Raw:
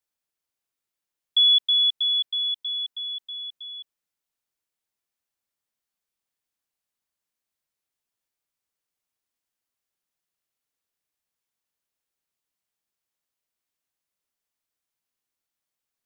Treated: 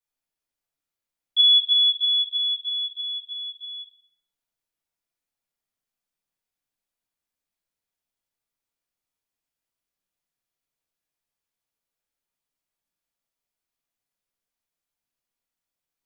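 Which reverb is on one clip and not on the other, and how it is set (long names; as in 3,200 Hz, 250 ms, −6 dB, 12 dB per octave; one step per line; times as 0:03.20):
rectangular room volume 180 cubic metres, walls mixed, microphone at 1.8 metres
level −7.5 dB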